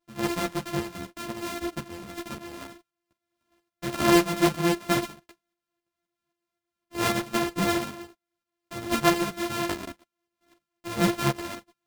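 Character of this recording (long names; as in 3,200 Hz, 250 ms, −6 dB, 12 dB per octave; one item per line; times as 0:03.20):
a buzz of ramps at a fixed pitch in blocks of 128 samples
tremolo saw up 3.8 Hz, depth 55%
a shimmering, thickened sound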